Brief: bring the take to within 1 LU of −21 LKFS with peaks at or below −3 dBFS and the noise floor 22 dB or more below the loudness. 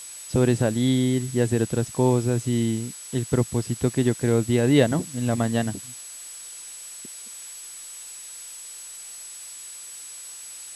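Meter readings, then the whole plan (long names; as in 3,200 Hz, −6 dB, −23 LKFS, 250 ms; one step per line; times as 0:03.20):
interfering tone 7,900 Hz; level of the tone −39 dBFS; background noise floor −40 dBFS; target noise floor −46 dBFS; integrated loudness −23.5 LKFS; sample peak −4.5 dBFS; target loudness −21.0 LKFS
→ notch filter 7,900 Hz, Q 30
noise reduction from a noise print 6 dB
level +2.5 dB
brickwall limiter −3 dBFS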